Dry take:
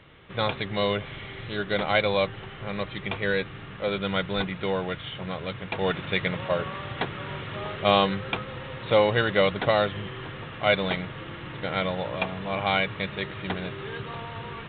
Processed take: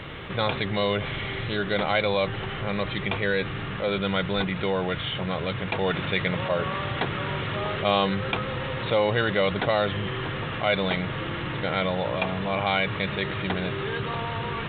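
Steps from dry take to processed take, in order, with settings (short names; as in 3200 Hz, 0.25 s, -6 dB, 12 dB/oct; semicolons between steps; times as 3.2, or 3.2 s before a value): fast leveller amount 50%; gain -3.5 dB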